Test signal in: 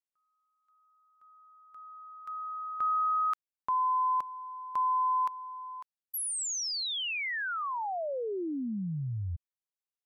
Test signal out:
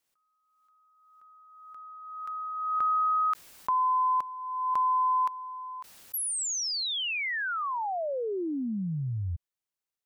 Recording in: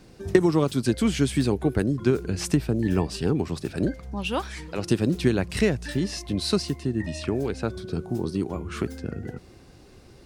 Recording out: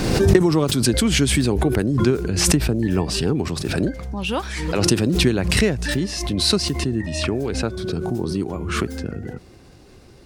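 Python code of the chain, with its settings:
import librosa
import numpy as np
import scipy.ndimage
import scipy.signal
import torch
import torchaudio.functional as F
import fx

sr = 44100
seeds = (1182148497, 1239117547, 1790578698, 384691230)

y = fx.pre_swell(x, sr, db_per_s=35.0)
y = y * 10.0 ** (2.5 / 20.0)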